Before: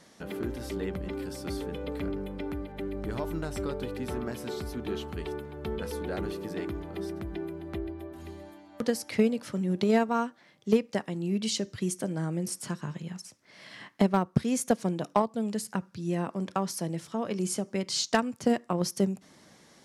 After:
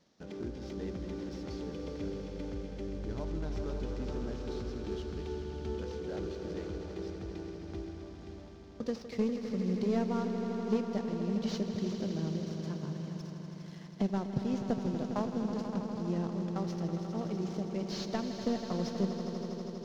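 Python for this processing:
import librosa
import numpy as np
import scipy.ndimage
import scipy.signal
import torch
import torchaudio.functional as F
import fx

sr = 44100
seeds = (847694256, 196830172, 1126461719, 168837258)

y = fx.cvsd(x, sr, bps=32000)
y = fx.peak_eq(y, sr, hz=1900.0, db=-8.0, octaves=2.6)
y = fx.leveller(y, sr, passes=1)
y = fx.echo_swell(y, sr, ms=81, loudest=5, wet_db=-11.0)
y = y * librosa.db_to_amplitude(-8.5)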